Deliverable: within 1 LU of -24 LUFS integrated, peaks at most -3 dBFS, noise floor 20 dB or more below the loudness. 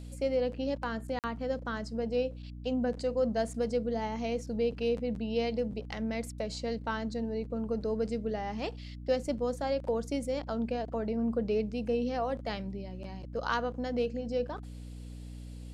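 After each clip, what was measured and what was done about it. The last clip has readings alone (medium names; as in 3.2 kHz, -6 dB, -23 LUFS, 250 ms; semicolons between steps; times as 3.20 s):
dropouts 1; longest dropout 48 ms; hum 60 Hz; highest harmonic 300 Hz; hum level -41 dBFS; loudness -33.5 LUFS; peak level -17.0 dBFS; loudness target -24.0 LUFS
-> interpolate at 1.19 s, 48 ms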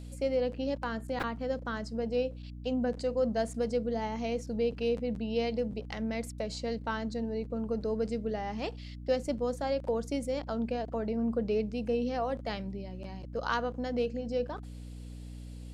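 dropouts 0; hum 60 Hz; highest harmonic 300 Hz; hum level -41 dBFS
-> de-hum 60 Hz, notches 5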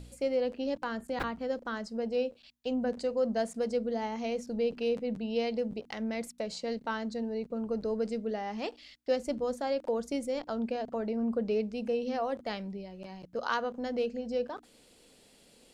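hum not found; loudness -33.5 LUFS; peak level -16.5 dBFS; loudness target -24.0 LUFS
-> trim +9.5 dB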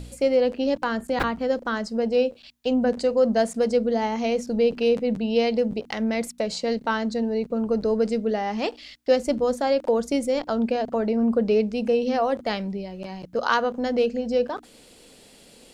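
loudness -24.0 LUFS; peak level -7.0 dBFS; noise floor -52 dBFS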